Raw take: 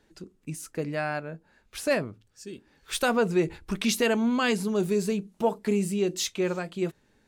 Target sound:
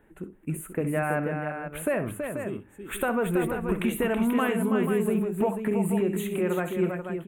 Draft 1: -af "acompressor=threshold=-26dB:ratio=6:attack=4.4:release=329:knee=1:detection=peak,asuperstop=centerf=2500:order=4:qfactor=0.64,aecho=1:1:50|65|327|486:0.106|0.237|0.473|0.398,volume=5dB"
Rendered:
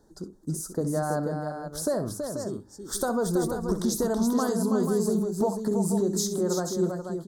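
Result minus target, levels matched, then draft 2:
2,000 Hz band −9.5 dB
-af "acompressor=threshold=-26dB:ratio=6:attack=4.4:release=329:knee=1:detection=peak,asuperstop=centerf=5100:order=4:qfactor=0.64,aecho=1:1:50|65|327|486:0.106|0.237|0.473|0.398,volume=5dB"

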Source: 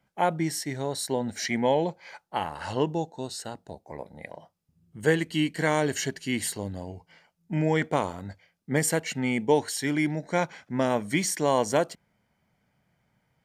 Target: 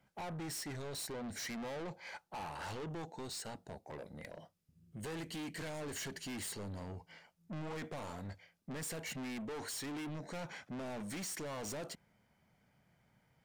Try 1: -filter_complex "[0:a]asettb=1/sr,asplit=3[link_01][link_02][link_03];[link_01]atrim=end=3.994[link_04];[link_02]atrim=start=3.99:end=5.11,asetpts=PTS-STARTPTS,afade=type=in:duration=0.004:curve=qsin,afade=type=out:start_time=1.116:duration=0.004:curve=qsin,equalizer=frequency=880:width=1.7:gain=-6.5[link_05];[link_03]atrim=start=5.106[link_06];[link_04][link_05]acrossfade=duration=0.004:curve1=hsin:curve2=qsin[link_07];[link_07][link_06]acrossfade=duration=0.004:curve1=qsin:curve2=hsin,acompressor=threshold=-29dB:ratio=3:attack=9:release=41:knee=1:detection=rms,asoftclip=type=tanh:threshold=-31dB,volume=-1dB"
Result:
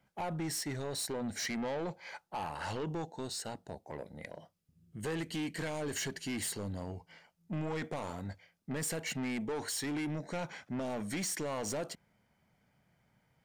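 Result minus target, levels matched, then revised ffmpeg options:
soft clipping: distortion −5 dB
-filter_complex "[0:a]asettb=1/sr,asplit=3[link_01][link_02][link_03];[link_01]atrim=end=3.994[link_04];[link_02]atrim=start=3.99:end=5.11,asetpts=PTS-STARTPTS,afade=type=in:duration=0.004:curve=qsin,afade=type=out:start_time=1.116:duration=0.004:curve=qsin,equalizer=frequency=880:width=1.7:gain=-6.5[link_05];[link_03]atrim=start=5.106[link_06];[link_04][link_05]acrossfade=duration=0.004:curve1=hsin:curve2=qsin[link_07];[link_07][link_06]acrossfade=duration=0.004:curve1=qsin:curve2=hsin,acompressor=threshold=-29dB:ratio=3:attack=9:release=41:knee=1:detection=rms,asoftclip=type=tanh:threshold=-39.5dB,volume=-1dB"

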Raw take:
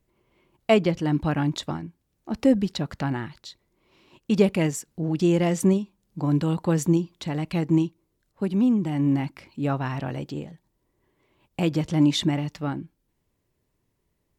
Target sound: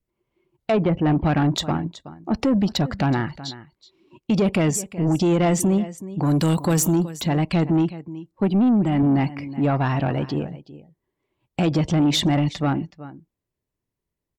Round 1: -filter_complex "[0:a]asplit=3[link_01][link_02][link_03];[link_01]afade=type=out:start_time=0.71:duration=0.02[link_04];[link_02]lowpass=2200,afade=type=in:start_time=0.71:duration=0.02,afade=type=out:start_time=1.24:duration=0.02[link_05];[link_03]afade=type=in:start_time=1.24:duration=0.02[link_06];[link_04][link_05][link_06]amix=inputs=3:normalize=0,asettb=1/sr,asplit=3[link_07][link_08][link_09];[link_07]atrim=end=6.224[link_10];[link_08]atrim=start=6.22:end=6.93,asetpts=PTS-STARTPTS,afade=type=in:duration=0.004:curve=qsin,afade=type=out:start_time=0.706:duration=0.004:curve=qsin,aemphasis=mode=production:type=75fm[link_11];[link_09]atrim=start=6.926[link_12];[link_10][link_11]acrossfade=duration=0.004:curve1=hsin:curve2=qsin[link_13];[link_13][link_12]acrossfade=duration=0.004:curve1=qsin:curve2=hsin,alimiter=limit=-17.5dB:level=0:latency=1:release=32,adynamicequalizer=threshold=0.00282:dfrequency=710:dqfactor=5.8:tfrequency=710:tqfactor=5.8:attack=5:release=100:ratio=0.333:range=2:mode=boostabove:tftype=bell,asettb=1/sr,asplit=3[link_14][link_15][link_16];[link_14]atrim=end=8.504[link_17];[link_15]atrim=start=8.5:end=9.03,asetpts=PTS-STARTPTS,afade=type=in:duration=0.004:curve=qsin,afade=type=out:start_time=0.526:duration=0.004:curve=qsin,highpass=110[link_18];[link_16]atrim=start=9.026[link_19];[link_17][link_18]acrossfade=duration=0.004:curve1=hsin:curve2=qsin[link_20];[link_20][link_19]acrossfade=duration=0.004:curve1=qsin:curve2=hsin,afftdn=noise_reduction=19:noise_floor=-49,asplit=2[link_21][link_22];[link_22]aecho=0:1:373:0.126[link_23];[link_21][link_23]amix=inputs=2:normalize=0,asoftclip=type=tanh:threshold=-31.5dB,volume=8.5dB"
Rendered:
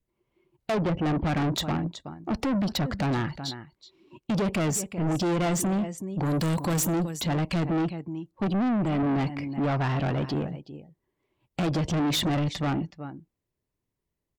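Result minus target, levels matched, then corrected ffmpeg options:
soft clipping: distortion +9 dB
-filter_complex "[0:a]asplit=3[link_01][link_02][link_03];[link_01]afade=type=out:start_time=0.71:duration=0.02[link_04];[link_02]lowpass=2200,afade=type=in:start_time=0.71:duration=0.02,afade=type=out:start_time=1.24:duration=0.02[link_05];[link_03]afade=type=in:start_time=1.24:duration=0.02[link_06];[link_04][link_05][link_06]amix=inputs=3:normalize=0,asettb=1/sr,asplit=3[link_07][link_08][link_09];[link_07]atrim=end=6.224[link_10];[link_08]atrim=start=6.22:end=6.93,asetpts=PTS-STARTPTS,afade=type=in:duration=0.004:curve=qsin,afade=type=out:start_time=0.706:duration=0.004:curve=qsin,aemphasis=mode=production:type=75fm[link_11];[link_09]atrim=start=6.926[link_12];[link_10][link_11]acrossfade=duration=0.004:curve1=hsin:curve2=qsin[link_13];[link_13][link_12]acrossfade=duration=0.004:curve1=qsin:curve2=hsin,alimiter=limit=-17.5dB:level=0:latency=1:release=32,adynamicequalizer=threshold=0.00282:dfrequency=710:dqfactor=5.8:tfrequency=710:tqfactor=5.8:attack=5:release=100:ratio=0.333:range=2:mode=boostabove:tftype=bell,asettb=1/sr,asplit=3[link_14][link_15][link_16];[link_14]atrim=end=8.504[link_17];[link_15]atrim=start=8.5:end=9.03,asetpts=PTS-STARTPTS,afade=type=in:duration=0.004:curve=qsin,afade=type=out:start_time=0.526:duration=0.004:curve=qsin,highpass=110[link_18];[link_16]atrim=start=9.026[link_19];[link_17][link_18]acrossfade=duration=0.004:curve1=hsin:curve2=qsin[link_20];[link_20][link_19]acrossfade=duration=0.004:curve1=qsin:curve2=hsin,afftdn=noise_reduction=19:noise_floor=-49,asplit=2[link_21][link_22];[link_22]aecho=0:1:373:0.126[link_23];[link_21][link_23]amix=inputs=2:normalize=0,asoftclip=type=tanh:threshold=-21.5dB,volume=8.5dB"

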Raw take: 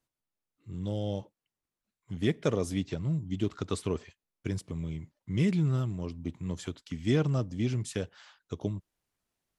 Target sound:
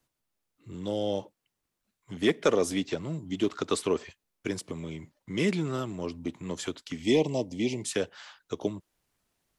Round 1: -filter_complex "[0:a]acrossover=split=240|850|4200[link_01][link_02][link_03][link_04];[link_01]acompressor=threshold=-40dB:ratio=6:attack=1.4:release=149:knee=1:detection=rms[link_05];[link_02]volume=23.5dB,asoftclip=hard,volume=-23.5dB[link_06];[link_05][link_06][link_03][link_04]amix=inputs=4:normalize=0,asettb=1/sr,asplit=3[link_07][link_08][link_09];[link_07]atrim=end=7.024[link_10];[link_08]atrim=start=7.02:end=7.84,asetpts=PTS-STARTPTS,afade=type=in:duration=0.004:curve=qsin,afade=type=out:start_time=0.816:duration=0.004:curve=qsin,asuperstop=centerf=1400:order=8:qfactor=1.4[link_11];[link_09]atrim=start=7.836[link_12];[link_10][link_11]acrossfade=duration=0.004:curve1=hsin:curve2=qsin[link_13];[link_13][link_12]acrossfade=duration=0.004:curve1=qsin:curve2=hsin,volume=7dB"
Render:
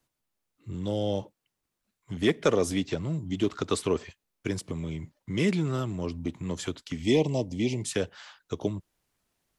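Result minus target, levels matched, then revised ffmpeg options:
downward compressor: peak gain reduction −9.5 dB
-filter_complex "[0:a]acrossover=split=240|850|4200[link_01][link_02][link_03][link_04];[link_01]acompressor=threshold=-51.5dB:ratio=6:attack=1.4:release=149:knee=1:detection=rms[link_05];[link_02]volume=23.5dB,asoftclip=hard,volume=-23.5dB[link_06];[link_05][link_06][link_03][link_04]amix=inputs=4:normalize=0,asettb=1/sr,asplit=3[link_07][link_08][link_09];[link_07]atrim=end=7.024[link_10];[link_08]atrim=start=7.02:end=7.84,asetpts=PTS-STARTPTS,afade=type=in:duration=0.004:curve=qsin,afade=type=out:start_time=0.816:duration=0.004:curve=qsin,asuperstop=centerf=1400:order=8:qfactor=1.4[link_11];[link_09]atrim=start=7.836[link_12];[link_10][link_11]acrossfade=duration=0.004:curve1=hsin:curve2=qsin[link_13];[link_13][link_12]acrossfade=duration=0.004:curve1=qsin:curve2=hsin,volume=7dB"

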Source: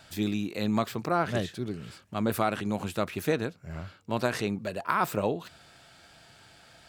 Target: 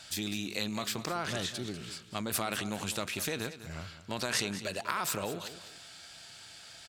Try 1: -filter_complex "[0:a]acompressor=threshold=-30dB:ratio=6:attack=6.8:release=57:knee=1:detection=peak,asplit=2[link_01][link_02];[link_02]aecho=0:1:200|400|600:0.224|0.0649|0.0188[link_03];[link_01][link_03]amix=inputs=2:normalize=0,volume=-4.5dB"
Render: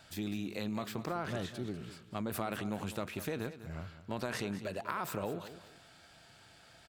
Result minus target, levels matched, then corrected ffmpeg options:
8,000 Hz band −9.0 dB
-filter_complex "[0:a]acompressor=threshold=-30dB:ratio=6:attack=6.8:release=57:knee=1:detection=peak,equalizer=frequency=6400:width=0.33:gain=14,asplit=2[link_01][link_02];[link_02]aecho=0:1:200|400|600:0.224|0.0649|0.0188[link_03];[link_01][link_03]amix=inputs=2:normalize=0,volume=-4.5dB"

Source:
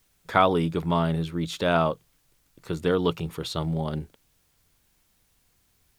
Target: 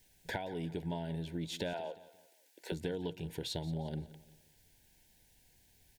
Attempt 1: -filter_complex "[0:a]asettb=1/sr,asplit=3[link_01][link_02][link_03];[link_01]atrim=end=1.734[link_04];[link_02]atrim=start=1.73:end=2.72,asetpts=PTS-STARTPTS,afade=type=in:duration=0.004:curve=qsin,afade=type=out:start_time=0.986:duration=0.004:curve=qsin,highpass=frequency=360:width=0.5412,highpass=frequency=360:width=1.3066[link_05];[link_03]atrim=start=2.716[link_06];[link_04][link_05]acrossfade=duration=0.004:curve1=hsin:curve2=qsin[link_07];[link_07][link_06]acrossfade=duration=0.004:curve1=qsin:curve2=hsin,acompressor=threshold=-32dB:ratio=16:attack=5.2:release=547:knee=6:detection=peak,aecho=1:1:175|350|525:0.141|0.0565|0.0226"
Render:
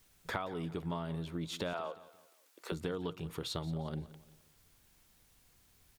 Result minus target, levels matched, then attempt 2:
1,000 Hz band +2.5 dB
-filter_complex "[0:a]asettb=1/sr,asplit=3[link_01][link_02][link_03];[link_01]atrim=end=1.734[link_04];[link_02]atrim=start=1.73:end=2.72,asetpts=PTS-STARTPTS,afade=type=in:duration=0.004:curve=qsin,afade=type=out:start_time=0.986:duration=0.004:curve=qsin,highpass=frequency=360:width=0.5412,highpass=frequency=360:width=1.3066[link_05];[link_03]atrim=start=2.716[link_06];[link_04][link_05]acrossfade=duration=0.004:curve1=hsin:curve2=qsin[link_07];[link_07][link_06]acrossfade=duration=0.004:curve1=qsin:curve2=hsin,acompressor=threshold=-32dB:ratio=16:attack=5.2:release=547:knee=6:detection=peak,asuperstop=centerf=1200:order=8:qfactor=2.3,aecho=1:1:175|350|525:0.141|0.0565|0.0226"

